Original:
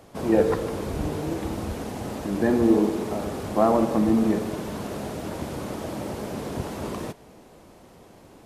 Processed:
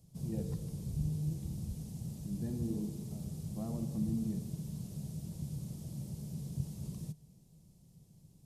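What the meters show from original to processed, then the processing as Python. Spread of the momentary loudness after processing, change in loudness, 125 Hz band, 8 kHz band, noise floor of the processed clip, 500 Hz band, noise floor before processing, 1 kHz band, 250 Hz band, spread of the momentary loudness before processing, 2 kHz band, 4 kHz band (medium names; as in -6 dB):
7 LU, -14.0 dB, -3.5 dB, -10.0 dB, -63 dBFS, -26.5 dB, -51 dBFS, -31.0 dB, -14.5 dB, 12 LU, under -30 dB, -17.0 dB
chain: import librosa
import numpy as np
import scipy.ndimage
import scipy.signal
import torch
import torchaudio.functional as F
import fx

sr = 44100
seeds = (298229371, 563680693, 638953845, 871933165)

y = fx.curve_eq(x, sr, hz=(100.0, 150.0, 270.0, 1500.0, 5100.0, 8900.0), db=(0, 10, -14, -28, -5, -1))
y = y * librosa.db_to_amplitude(-8.0)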